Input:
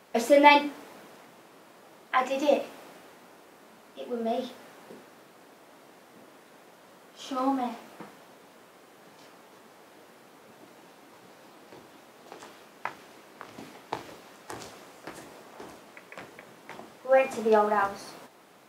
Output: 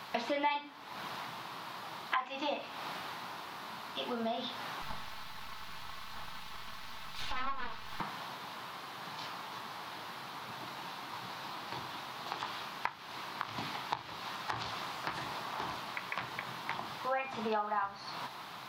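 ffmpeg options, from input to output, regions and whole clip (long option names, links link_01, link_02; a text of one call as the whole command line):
ffmpeg -i in.wav -filter_complex "[0:a]asettb=1/sr,asplit=3[link_01][link_02][link_03];[link_01]atrim=end=4.824[link_04];[link_02]atrim=start=4.82:end=8,asetpts=PTS-STARTPTS,afade=type=in:duration=0.004:curve=qsin,afade=type=out:start_time=3.176:duration=0.004:curve=qsin,aeval=exprs='abs(val(0))':channel_layout=same,aecho=1:1:4.6:0.42,atrim=end_sample=140238[link_05];[link_03]atrim=start=7.996[link_06];[link_04][link_05]acrossfade=duration=0.004:curve1=hsin:curve2=qsin[link_07];[link_07][link_06]acrossfade=duration=0.004:curve1=qsin:curve2=hsin,acrossover=split=4600[link_08][link_09];[link_09]acompressor=threshold=-57dB:ratio=4:attack=1:release=60[link_10];[link_08][link_10]amix=inputs=2:normalize=0,equalizer=frequency=125:width_type=o:width=1:gain=6,equalizer=frequency=250:width_type=o:width=1:gain=-5,equalizer=frequency=500:width_type=o:width=1:gain=-10,equalizer=frequency=1000:width_type=o:width=1:gain=9,equalizer=frequency=4000:width_type=o:width=1:gain=10,equalizer=frequency=8000:width_type=o:width=1:gain=-8,acompressor=threshold=-41dB:ratio=5,volume=7dB" out.wav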